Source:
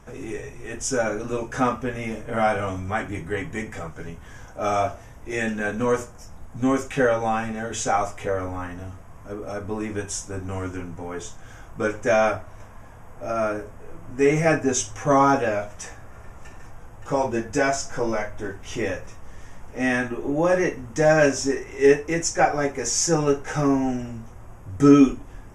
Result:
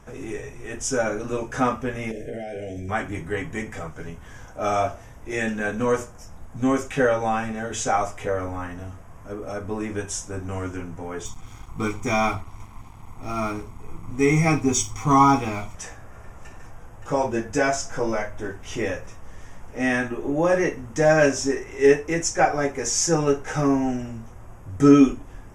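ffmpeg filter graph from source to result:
-filter_complex "[0:a]asettb=1/sr,asplit=3[a][b][c];[a]atrim=end=2.114[d];[b]atrim=start=2.11:end=2.89,asetpts=PTS-STARTPTS,afade=t=in:d=0.004:c=qsin,afade=t=out:st=0.776:d=0.004:c=qsin,equalizer=f=390:t=o:w=0.61:g=10.5,acompressor=threshold=-28dB:ratio=8:attack=3.2:release=140:knee=1:detection=peak,asuperstop=centerf=1100:order=8:qfactor=1.2[e];[c]atrim=start=2.886[f];[d][e]acrossfade=d=0.004:c1=hsin:c2=qsin[g];[g][f]acrossfade=d=0.004:c1=qsin:c2=hsin,asettb=1/sr,asplit=3[h][i][j];[h]atrim=end=11.254[k];[i]atrim=start=11.25:end=15.75,asetpts=PTS-STARTPTS,afade=t=in:d=0.004:c=qsin,afade=t=out:st=4.496:d=0.004:c=qsin,aecho=1:1:0.9:0.94,atrim=end_sample=198450,aeval=exprs='sgn(val(0))*max(abs(val(0))-0.00562,0)':c=same,equalizer=f=1.5k:t=o:w=0.45:g=-6.5[l];[j]atrim=start=15.746[m];[k][l]acrossfade=d=0.004:c1=hsin:c2=qsin[n];[n][m]acrossfade=d=0.004:c1=qsin:c2=hsin"

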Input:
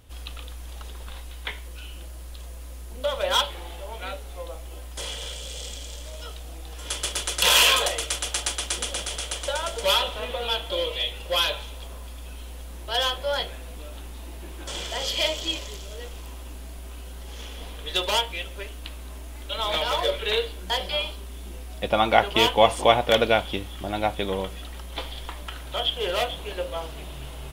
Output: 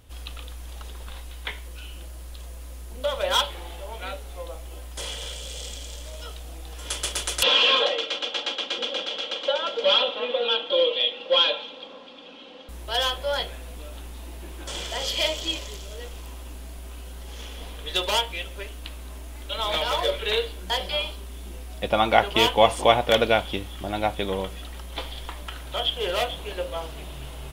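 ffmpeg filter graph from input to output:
-filter_complex "[0:a]asettb=1/sr,asplit=3[a][b][c];[a]atrim=end=7.434[d];[b]atrim=start=7.43:end=12.69,asetpts=PTS-STARTPTS,afade=t=in:d=0.004:c=qsin,afade=t=out:st=5.256:d=0.004:c=qsin,asoftclip=type=hard:threshold=-19dB,highpass=f=200:w=0.5412,highpass=f=200:w=1.3066,equalizer=f=470:t=q:w=4:g=6,equalizer=f=1.9k:t=q:w=4:g=-4,equalizer=f=3.2k:t=q:w=4:g=5,lowpass=f=4.3k:w=0.5412,lowpass=f=4.3k:w=1.3066,aecho=1:1:3.7:0.56,atrim=end_sample=231966[e];[c]atrim=start=12.686[f];[d][e]acrossfade=d=0.004:c1=hsin:c2=qsin[g];[g][f]acrossfade=d=0.004:c1=qsin:c2=hsin"

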